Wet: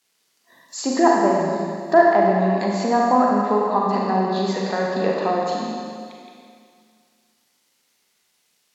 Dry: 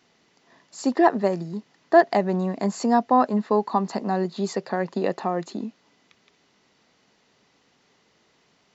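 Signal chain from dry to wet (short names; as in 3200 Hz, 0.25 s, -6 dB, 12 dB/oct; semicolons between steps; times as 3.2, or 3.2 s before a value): bit-crush 10-bit; low shelf 170 Hz -6.5 dB; spectral noise reduction 15 dB; high shelf 2300 Hz +11.5 dB; treble ducked by the level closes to 1500 Hz, closed at -19.5 dBFS; Schroeder reverb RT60 2.2 s, combs from 32 ms, DRR -2.5 dB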